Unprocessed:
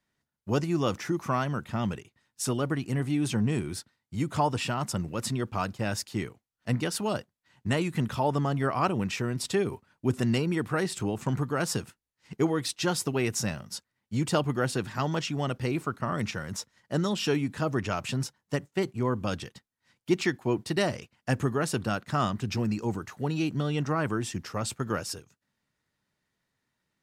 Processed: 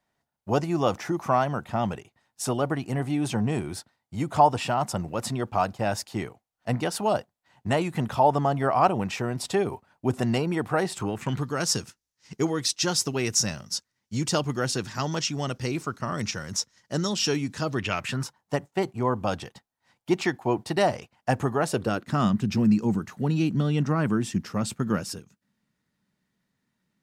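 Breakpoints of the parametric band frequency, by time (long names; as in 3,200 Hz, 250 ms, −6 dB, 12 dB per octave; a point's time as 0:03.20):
parametric band +11 dB 0.87 octaves
0:10.92 740 Hz
0:11.51 5,800 Hz
0:17.57 5,800 Hz
0:18.40 780 Hz
0:21.62 780 Hz
0:22.21 200 Hz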